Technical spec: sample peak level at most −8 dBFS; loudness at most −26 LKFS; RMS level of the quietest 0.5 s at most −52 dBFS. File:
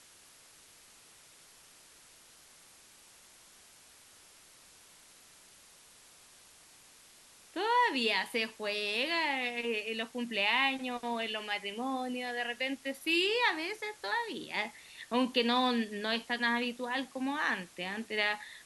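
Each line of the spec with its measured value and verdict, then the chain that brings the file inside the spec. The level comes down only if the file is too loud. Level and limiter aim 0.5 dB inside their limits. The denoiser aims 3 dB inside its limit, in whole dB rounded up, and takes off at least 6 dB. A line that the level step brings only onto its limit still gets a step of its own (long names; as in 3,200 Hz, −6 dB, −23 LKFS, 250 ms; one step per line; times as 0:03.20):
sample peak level −15.0 dBFS: in spec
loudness −32.0 LKFS: in spec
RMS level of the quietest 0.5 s −59 dBFS: in spec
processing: no processing needed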